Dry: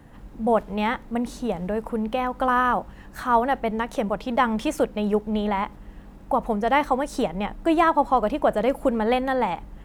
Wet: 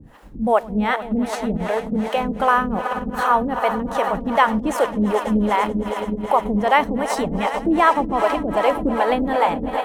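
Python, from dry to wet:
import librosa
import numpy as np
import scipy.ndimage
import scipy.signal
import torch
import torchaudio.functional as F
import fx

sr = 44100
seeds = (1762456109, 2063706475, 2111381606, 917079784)

p1 = fx.echo_swell(x, sr, ms=110, loudest=5, wet_db=-14)
p2 = fx.level_steps(p1, sr, step_db=14)
p3 = p1 + (p2 * 10.0 ** (-1.0 / 20.0))
p4 = fx.harmonic_tremolo(p3, sr, hz=2.6, depth_pct=100, crossover_hz=400.0)
y = p4 * 10.0 ** (4.0 / 20.0)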